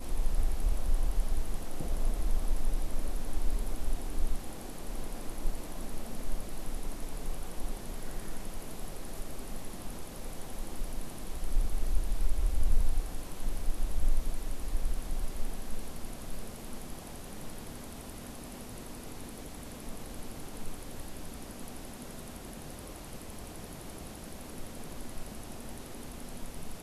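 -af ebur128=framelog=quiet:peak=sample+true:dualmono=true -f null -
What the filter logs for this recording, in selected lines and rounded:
Integrated loudness:
  I:         -37.6 LUFS
  Threshold: -47.6 LUFS
Loudness range:
  LRA:         7.9 LU
  Threshold: -57.9 LUFS
  LRA low:   -41.8 LUFS
  LRA high:  -33.9 LUFS
Sample peak:
  Peak:      -12.8 dBFS
True peak:
  Peak:      -12.8 dBFS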